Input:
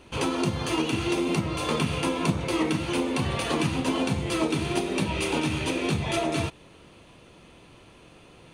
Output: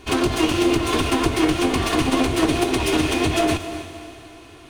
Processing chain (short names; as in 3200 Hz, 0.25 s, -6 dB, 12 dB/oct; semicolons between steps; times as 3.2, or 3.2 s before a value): minimum comb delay 2.8 ms; diffused feedback echo 0.477 s, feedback 47%, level -11.5 dB; time stretch by phase-locked vocoder 0.55×; gain +9 dB